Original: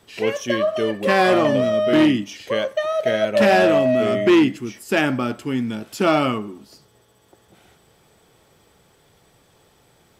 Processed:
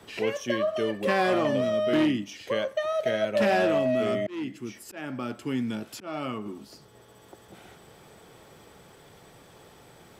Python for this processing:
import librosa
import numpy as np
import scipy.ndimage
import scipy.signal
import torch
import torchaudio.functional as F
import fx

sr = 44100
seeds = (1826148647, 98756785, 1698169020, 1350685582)

y = fx.auto_swell(x, sr, attack_ms=692.0, at=(4.14, 6.46))
y = fx.band_squash(y, sr, depth_pct=40)
y = F.gain(torch.from_numpy(y), -6.5).numpy()